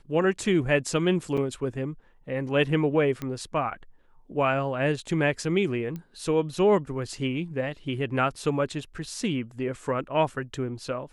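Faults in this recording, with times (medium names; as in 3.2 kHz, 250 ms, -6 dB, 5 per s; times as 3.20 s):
1.37–1.38 s: dropout 5.9 ms
3.22 s: pop -19 dBFS
5.96 s: pop -24 dBFS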